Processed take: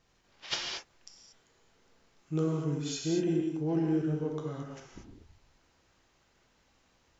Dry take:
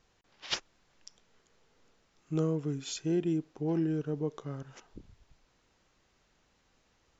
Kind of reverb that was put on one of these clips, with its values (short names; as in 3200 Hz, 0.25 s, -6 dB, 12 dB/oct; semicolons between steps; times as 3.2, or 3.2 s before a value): non-linear reverb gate 0.26 s flat, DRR -1.5 dB; gain -1.5 dB